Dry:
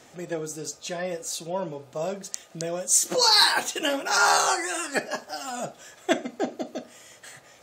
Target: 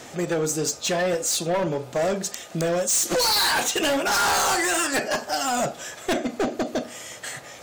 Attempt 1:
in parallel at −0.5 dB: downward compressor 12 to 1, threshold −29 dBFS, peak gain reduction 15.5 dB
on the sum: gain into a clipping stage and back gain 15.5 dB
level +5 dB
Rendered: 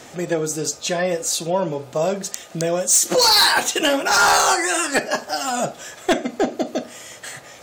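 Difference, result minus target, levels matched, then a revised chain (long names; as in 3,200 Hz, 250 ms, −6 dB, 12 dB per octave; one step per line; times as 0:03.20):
gain into a clipping stage and back: distortion −8 dB
in parallel at −0.5 dB: downward compressor 12 to 1, threshold −29 dBFS, peak gain reduction 15.5 dB
on the sum: gain into a clipping stage and back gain 24.5 dB
level +5 dB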